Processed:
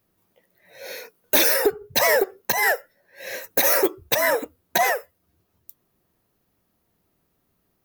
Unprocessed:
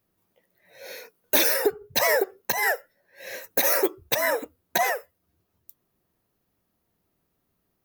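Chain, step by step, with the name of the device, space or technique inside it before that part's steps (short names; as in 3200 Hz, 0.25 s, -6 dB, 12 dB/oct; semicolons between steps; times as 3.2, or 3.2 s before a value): parallel distortion (in parallel at -4 dB: hard clip -21 dBFS, distortion -9 dB)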